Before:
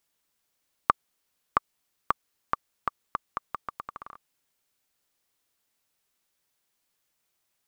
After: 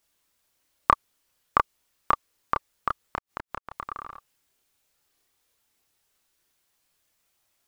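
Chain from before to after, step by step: 3.02–3.71 flipped gate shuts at -20 dBFS, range -31 dB; chorus voices 6, 0.4 Hz, delay 29 ms, depth 1.9 ms; gain +7.5 dB

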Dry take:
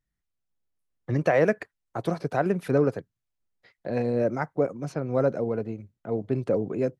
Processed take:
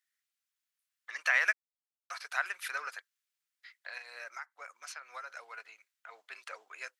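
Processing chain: HPF 1400 Hz 24 dB/oct; 1.53–2.1 mute; 3.92–5.3 compressor 10:1, threshold -46 dBFS, peak gain reduction 15.5 dB; gain +5.5 dB

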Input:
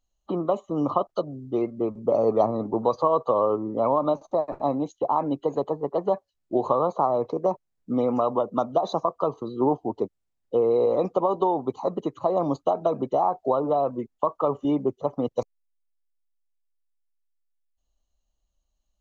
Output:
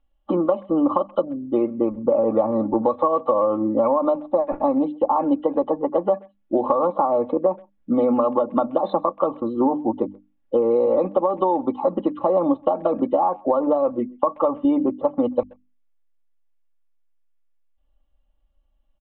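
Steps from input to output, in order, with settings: notches 50/100/150/200/250/300 Hz; comb 3.6 ms, depth 83%; compressor 10:1, threshold -20 dBFS, peak gain reduction 9 dB; air absorption 270 m; speakerphone echo 0.13 s, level -26 dB; downsampling 8000 Hz; gain +6 dB

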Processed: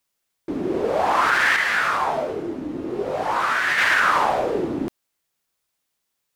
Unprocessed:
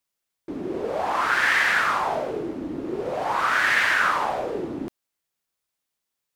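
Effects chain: limiter -14.5 dBFS, peak gain reduction 5.5 dB; 1.56–3.78 detuned doubles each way 21 cents; gain +5.5 dB

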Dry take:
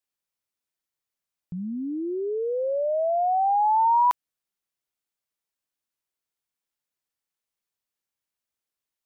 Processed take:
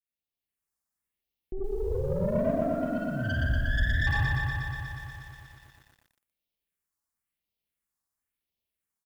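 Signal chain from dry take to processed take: phaser stages 4, 0.97 Hz, lowest notch 430–1500 Hz; ring modulator 200 Hz, from 2.62 s 830 Hz, from 4.07 s 160 Hz; low shelf 82 Hz +5 dB; notch 1500 Hz, Q 16; reverb RT60 0.80 s, pre-delay 52 ms, DRR -2.5 dB; compressor 6:1, threshold -22 dBFS, peak gain reduction 11 dB; speakerphone echo 0.1 s, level -15 dB; AGC gain up to 7.5 dB; soft clip -17.5 dBFS, distortion -13 dB; dynamic EQ 1400 Hz, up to -7 dB, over -43 dBFS, Q 3.9; lo-fi delay 0.12 s, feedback 80%, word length 9-bit, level -4 dB; gain -6 dB

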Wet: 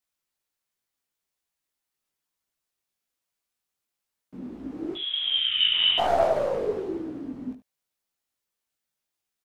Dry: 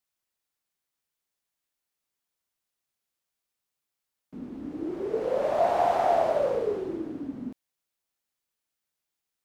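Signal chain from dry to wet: tracing distortion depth 0.071 ms; 4.95–5.98 inverted band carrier 3700 Hz; 5.39–5.73 spectral delete 220–1200 Hz; chorus voices 2, 1.2 Hz, delay 18 ms, depth 3 ms; on a send: echo 74 ms -14 dB; on the sum: gain +3.5 dB

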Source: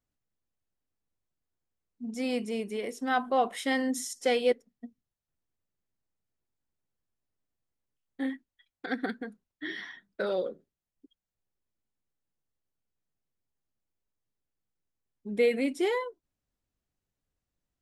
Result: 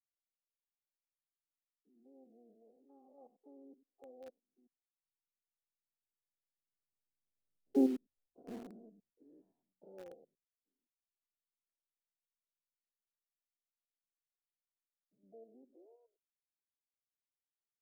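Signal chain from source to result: stepped spectrum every 0.1 s; Doppler pass-by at 7.81, 18 m/s, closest 2.5 m; harmoniser +5 st -17 dB, +7 st -8 dB; steep low-pass 710 Hz 36 dB/oct; in parallel at -9 dB: requantised 8-bit, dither none; on the sum: gain +2 dB

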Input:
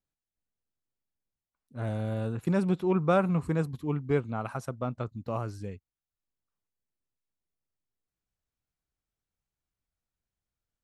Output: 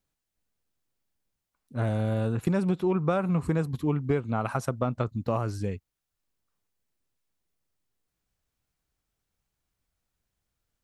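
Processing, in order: compressor 10:1, threshold -30 dBFS, peak gain reduction 11.5 dB; gain +8 dB

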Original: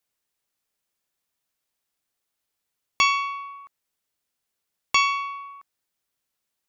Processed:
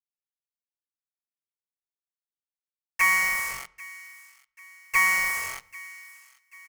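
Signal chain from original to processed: sine-wave speech; dynamic EQ 700 Hz, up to +6 dB, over -35 dBFS, Q 0.86; harmoniser -3 st -4 dB; in parallel at -8 dB: fuzz box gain 45 dB, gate -39 dBFS; on the sum: high shelf 2200 Hz +9.5 dB; fixed phaser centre 1000 Hz, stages 6; requantised 6-bit, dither none; thin delay 0.789 s, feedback 43%, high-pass 1500 Hz, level -19.5 dB; on a send at -19.5 dB: reverb RT60 0.75 s, pre-delay 14 ms; on the sum: gain -6.5 dB

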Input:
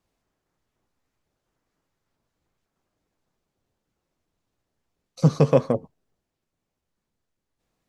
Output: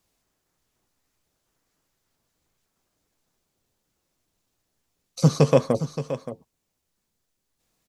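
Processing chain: high shelf 3500 Hz +11.5 dB; on a send: echo 0.573 s -12 dB

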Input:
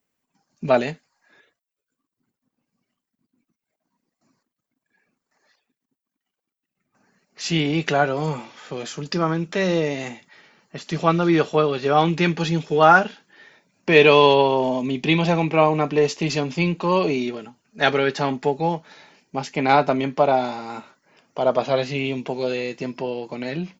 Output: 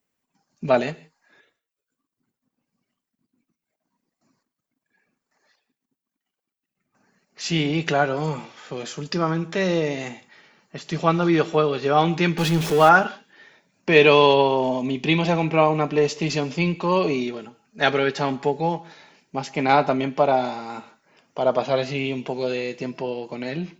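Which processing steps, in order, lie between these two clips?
12.38–12.89 zero-crossing step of -23 dBFS; on a send: reverb, pre-delay 3 ms, DRR 18 dB; on the sum: gain -1 dB

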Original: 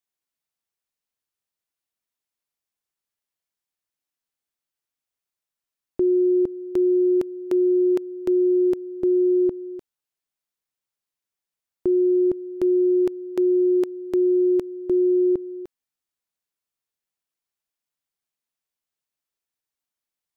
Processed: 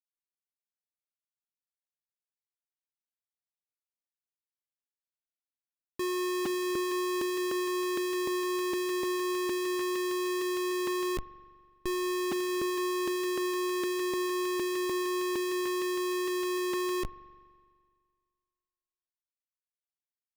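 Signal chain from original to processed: delay with a stepping band-pass 0.459 s, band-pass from 210 Hz, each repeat 0.7 oct, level -3 dB; Schmitt trigger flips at -42 dBFS; spring tank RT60 1.9 s, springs 42 ms, chirp 50 ms, DRR 16.5 dB; gain -5.5 dB

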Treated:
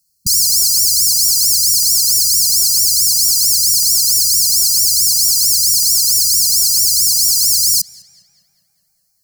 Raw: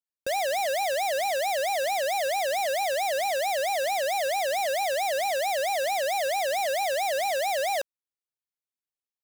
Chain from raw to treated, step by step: brick-wall FIR band-stop 190–4100 Hz; tape echo 0.203 s, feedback 78%, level -23.5 dB, low-pass 3100 Hz; maximiser +33 dB; gain -1 dB

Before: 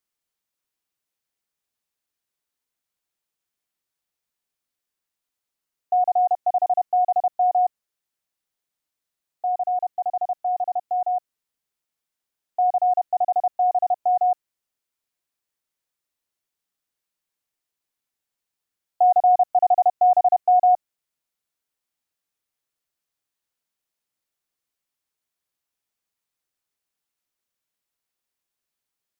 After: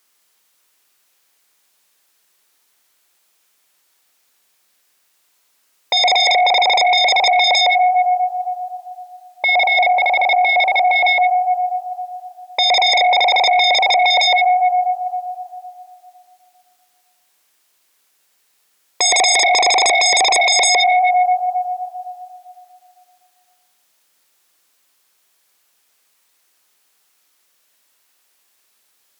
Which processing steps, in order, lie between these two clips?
HPF 530 Hz 6 dB/oct; Schroeder reverb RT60 2.6 s, combs from 30 ms, DRR 4.5 dB; sine folder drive 18 dB, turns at -10.5 dBFS

